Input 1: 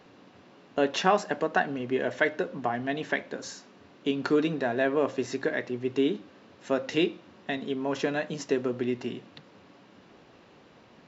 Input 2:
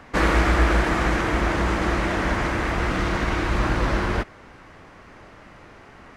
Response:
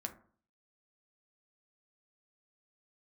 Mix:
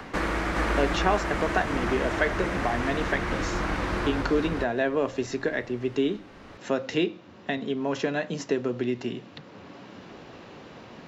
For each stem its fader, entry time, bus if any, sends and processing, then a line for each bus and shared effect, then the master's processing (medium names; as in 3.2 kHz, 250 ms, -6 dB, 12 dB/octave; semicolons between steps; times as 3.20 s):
+0.5 dB, 0.00 s, no send, no echo send, none
-3.0 dB, 0.00 s, no send, echo send -6.5 dB, hum notches 60/120 Hz; auto duck -6 dB, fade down 0.20 s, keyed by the first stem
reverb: none
echo: delay 412 ms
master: three bands compressed up and down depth 40%